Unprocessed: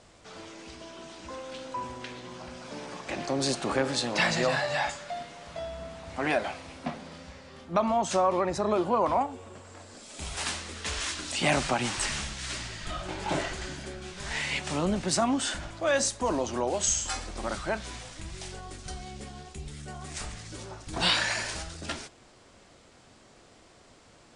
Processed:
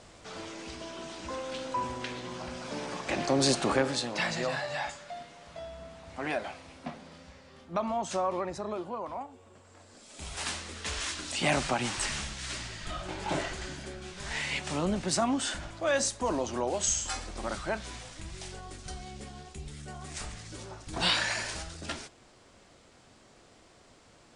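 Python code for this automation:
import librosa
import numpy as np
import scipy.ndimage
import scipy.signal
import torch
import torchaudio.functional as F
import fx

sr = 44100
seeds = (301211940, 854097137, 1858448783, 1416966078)

y = fx.gain(x, sr, db=fx.line((3.63, 3.0), (4.17, -5.5), (8.36, -5.5), (9.09, -13.0), (10.53, -2.0)))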